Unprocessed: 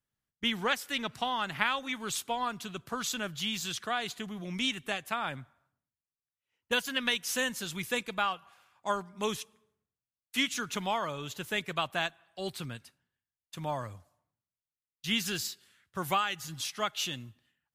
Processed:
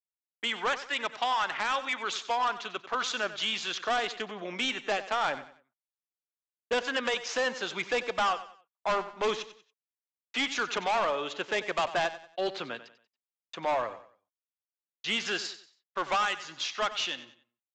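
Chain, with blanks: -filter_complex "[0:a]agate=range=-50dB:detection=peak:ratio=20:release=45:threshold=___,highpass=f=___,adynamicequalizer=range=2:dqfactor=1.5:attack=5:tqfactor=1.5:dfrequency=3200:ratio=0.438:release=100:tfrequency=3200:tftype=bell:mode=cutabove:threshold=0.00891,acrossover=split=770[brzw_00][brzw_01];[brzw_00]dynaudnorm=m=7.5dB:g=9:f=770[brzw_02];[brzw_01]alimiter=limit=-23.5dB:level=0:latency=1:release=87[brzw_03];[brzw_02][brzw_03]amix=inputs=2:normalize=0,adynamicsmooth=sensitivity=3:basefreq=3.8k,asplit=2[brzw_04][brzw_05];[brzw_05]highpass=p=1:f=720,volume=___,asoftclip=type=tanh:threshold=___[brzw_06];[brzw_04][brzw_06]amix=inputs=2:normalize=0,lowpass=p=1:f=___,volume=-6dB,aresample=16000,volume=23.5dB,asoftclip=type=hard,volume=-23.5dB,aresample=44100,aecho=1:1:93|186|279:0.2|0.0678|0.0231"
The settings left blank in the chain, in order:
-57dB, 400, 14dB, -15.5dB, 5.7k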